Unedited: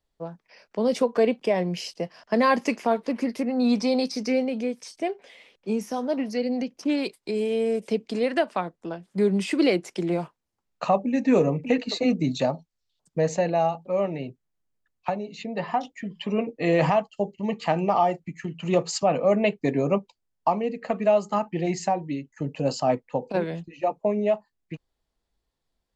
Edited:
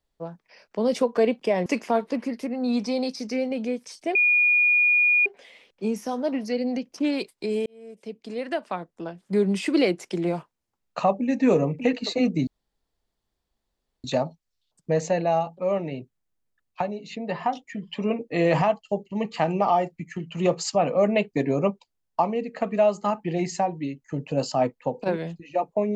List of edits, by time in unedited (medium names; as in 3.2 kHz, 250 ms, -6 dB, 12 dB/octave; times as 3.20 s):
1.66–2.62 s: delete
3.16–4.47 s: gain -3 dB
5.11 s: add tone 2.44 kHz -16 dBFS 1.11 s
7.51–9.07 s: fade in
12.32 s: insert room tone 1.57 s